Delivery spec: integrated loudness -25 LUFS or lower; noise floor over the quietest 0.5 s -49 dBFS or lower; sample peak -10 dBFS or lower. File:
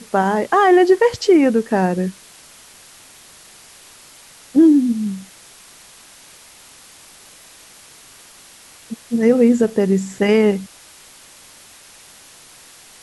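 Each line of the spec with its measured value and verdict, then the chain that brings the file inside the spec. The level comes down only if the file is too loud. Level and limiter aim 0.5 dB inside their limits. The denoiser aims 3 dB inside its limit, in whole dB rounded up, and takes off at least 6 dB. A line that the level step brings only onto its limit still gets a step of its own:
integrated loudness -16.0 LUFS: fail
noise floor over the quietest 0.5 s -45 dBFS: fail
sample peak -4.0 dBFS: fail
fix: trim -9.5 dB

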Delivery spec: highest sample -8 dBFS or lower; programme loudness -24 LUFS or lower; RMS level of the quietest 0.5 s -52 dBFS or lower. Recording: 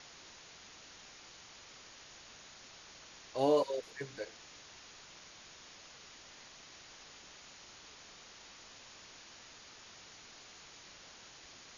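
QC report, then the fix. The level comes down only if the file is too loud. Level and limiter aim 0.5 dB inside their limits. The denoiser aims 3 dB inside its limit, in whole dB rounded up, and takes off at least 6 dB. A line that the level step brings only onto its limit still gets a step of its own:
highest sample -18.0 dBFS: pass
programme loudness -43.5 LUFS: pass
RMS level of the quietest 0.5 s -55 dBFS: pass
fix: none needed

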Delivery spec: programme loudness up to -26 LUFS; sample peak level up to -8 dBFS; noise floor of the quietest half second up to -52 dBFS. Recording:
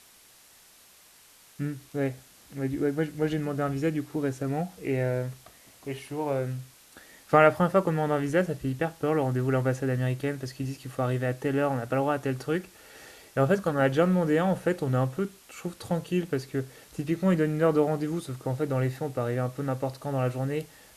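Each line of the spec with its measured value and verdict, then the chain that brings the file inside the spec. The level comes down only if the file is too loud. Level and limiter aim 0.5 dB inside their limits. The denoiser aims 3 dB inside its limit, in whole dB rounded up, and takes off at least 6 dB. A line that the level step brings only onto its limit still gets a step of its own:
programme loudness -28.0 LUFS: pass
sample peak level -5.5 dBFS: fail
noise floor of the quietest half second -56 dBFS: pass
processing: peak limiter -8.5 dBFS

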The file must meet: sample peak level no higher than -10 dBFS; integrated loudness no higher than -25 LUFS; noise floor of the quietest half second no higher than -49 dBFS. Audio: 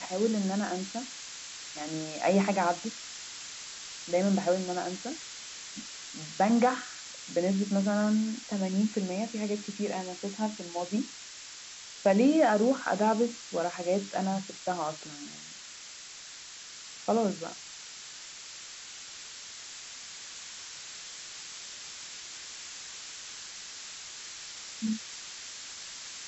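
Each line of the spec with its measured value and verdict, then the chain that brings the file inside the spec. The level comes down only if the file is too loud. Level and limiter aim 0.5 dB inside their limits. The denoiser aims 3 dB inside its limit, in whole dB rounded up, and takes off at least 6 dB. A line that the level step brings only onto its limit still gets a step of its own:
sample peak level -13.0 dBFS: pass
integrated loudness -32.0 LUFS: pass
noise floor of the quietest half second -46 dBFS: fail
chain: noise reduction 6 dB, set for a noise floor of -46 dBFS

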